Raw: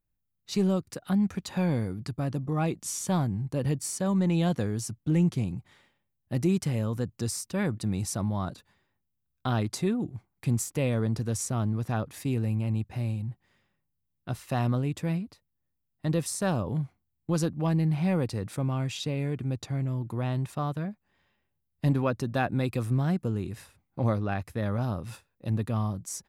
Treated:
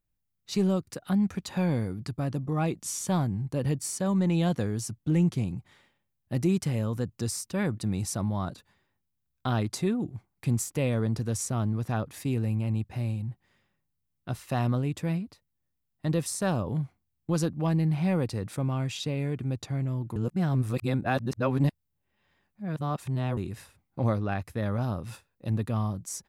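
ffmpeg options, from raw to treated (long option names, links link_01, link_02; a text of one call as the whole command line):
ffmpeg -i in.wav -filter_complex "[0:a]asplit=3[link_01][link_02][link_03];[link_01]atrim=end=20.162[link_04];[link_02]atrim=start=20.158:end=23.372,asetpts=PTS-STARTPTS,areverse[link_05];[link_03]atrim=start=23.368[link_06];[link_04][link_05]acrossfade=duration=0.004:curve1=hsin:curve2=hsin[link_07];[link_07][link_06]acrossfade=duration=0.004:curve1=hsin:curve2=hsin" out.wav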